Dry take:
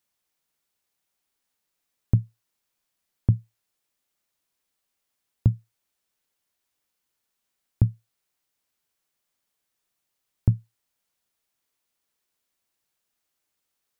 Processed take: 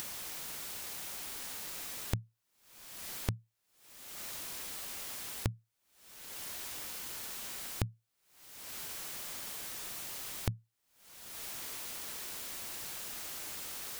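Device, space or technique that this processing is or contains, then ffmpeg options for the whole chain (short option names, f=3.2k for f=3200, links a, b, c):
upward and downward compression: -af "acompressor=mode=upward:threshold=-37dB:ratio=2.5,acompressor=threshold=-52dB:ratio=5,volume=15dB"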